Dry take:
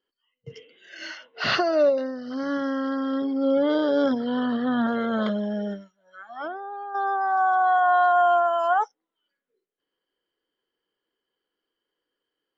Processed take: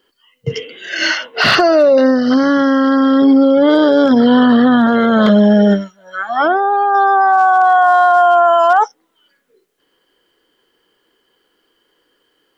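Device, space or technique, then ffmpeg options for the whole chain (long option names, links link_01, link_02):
mastering chain: -af "equalizer=frequency=550:width_type=o:width=0.46:gain=-1.5,acompressor=threshold=-25dB:ratio=2.5,asoftclip=type=hard:threshold=-19dB,alimiter=level_in=24dB:limit=-1dB:release=50:level=0:latency=1,volume=-2.5dB"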